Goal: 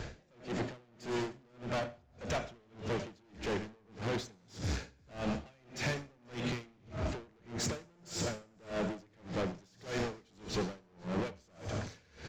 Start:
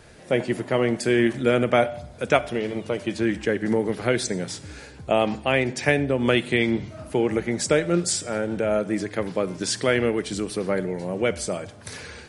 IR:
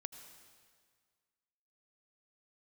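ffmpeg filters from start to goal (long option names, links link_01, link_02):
-filter_complex "[0:a]lowshelf=frequency=220:gain=6.5,acompressor=threshold=-26dB:ratio=5,asoftclip=type=hard:threshold=-37.5dB,aresample=16000,aresample=44100[link_01];[1:a]atrim=start_sample=2205[link_02];[link_01][link_02]afir=irnorm=-1:irlink=0,aeval=exprs='0.0237*(cos(1*acos(clip(val(0)/0.0237,-1,1)))-cos(1*PI/2))+0.00596*(cos(5*acos(clip(val(0)/0.0237,-1,1)))-cos(5*PI/2))+0.00266*(cos(7*acos(clip(val(0)/0.0237,-1,1)))-cos(7*PI/2))+0.000668*(cos(8*acos(clip(val(0)/0.0237,-1,1)))-cos(8*PI/2))':channel_layout=same,aecho=1:1:198|488:0.15|0.126,aeval=exprs='val(0)*pow(10,-33*(0.5-0.5*cos(2*PI*1.7*n/s))/20)':channel_layout=same,volume=7dB"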